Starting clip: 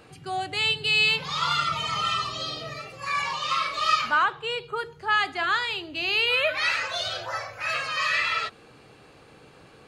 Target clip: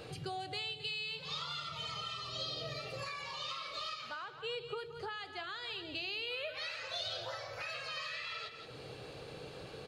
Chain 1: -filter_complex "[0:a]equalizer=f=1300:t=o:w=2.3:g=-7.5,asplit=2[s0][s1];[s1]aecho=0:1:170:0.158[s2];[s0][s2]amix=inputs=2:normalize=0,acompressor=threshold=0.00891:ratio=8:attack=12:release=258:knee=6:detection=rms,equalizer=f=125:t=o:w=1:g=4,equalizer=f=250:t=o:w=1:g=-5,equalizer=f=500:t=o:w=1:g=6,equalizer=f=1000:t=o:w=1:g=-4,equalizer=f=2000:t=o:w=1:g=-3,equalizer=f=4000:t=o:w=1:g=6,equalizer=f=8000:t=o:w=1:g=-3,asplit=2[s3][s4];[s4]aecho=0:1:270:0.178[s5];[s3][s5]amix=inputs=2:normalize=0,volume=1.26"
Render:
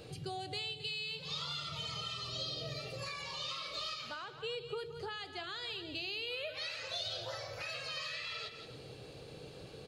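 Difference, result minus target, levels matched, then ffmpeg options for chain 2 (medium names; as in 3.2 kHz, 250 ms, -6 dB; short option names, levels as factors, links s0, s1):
1 kHz band -3.0 dB
-filter_complex "[0:a]asplit=2[s0][s1];[s1]aecho=0:1:170:0.158[s2];[s0][s2]amix=inputs=2:normalize=0,acompressor=threshold=0.00891:ratio=8:attack=12:release=258:knee=6:detection=rms,equalizer=f=125:t=o:w=1:g=4,equalizer=f=250:t=o:w=1:g=-5,equalizer=f=500:t=o:w=1:g=6,equalizer=f=1000:t=o:w=1:g=-4,equalizer=f=2000:t=o:w=1:g=-3,equalizer=f=4000:t=o:w=1:g=6,equalizer=f=8000:t=o:w=1:g=-3,asplit=2[s3][s4];[s4]aecho=0:1:270:0.178[s5];[s3][s5]amix=inputs=2:normalize=0,volume=1.26"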